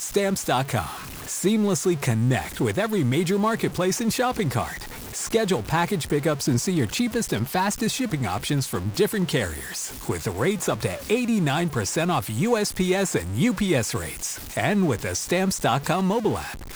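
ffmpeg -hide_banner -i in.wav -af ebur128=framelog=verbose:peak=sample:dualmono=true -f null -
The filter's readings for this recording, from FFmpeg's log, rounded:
Integrated loudness:
  I:         -21.1 LUFS
  Threshold: -31.1 LUFS
Loudness range:
  LRA:         1.8 LU
  Threshold: -41.1 LUFS
  LRA low:   -22.1 LUFS
  LRA high:  -20.3 LUFS
Sample peak:
  Peak:       -9.1 dBFS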